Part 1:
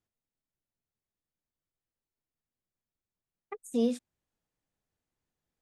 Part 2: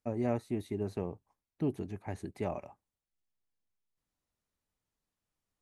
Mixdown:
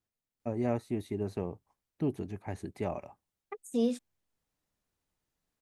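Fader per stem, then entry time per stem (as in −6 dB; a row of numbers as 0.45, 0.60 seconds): −1.0, +1.0 decibels; 0.00, 0.40 seconds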